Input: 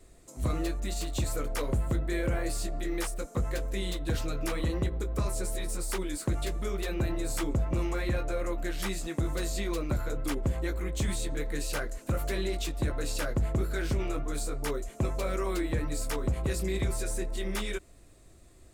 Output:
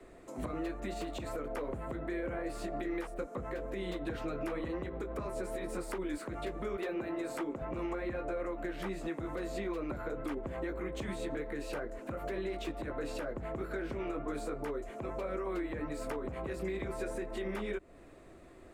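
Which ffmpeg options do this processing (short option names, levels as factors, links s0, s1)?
-filter_complex "[0:a]asettb=1/sr,asplit=3[s0][s1][s2];[s0]atrim=end=6.764[s3];[s1]atrim=start=6.76:end=7.61,asetpts=PTS-STARTPTS,afade=t=in:d=0.004:c=qsin,afade=t=out:st=0.846:d=0.004:c=qsin,highpass=200[s4];[s2]atrim=start=7.606[s5];[s3][s4]acrossfade=d=0.004:c1=hsin:c2=qsin[s6];[s6][s5]acrossfade=d=0.004:c1=qsin:c2=hsin,acrossover=split=200 2600:gain=0.224 1 0.126[s7][s8][s9];[s7][s8][s9]amix=inputs=3:normalize=0,acrossover=split=90|810[s10][s11][s12];[s10]acompressor=threshold=0.00224:ratio=4[s13];[s11]acompressor=threshold=0.00708:ratio=4[s14];[s12]acompressor=threshold=0.00224:ratio=4[s15];[s13][s14][s15]amix=inputs=3:normalize=0,alimiter=level_in=3.98:limit=0.0631:level=0:latency=1:release=96,volume=0.251,volume=2.51"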